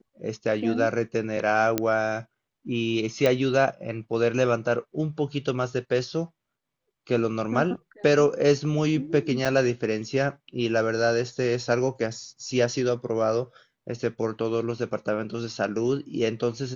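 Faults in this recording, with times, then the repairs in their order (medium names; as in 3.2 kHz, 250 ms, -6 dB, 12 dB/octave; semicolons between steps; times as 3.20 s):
1.78 s: pop -8 dBFS
3.26 s: pop -10 dBFS
9.45–9.46 s: dropout 5.8 ms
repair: de-click; interpolate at 9.45 s, 5.8 ms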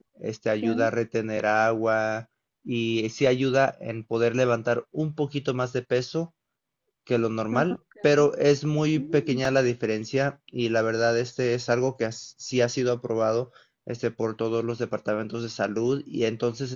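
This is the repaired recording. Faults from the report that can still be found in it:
nothing left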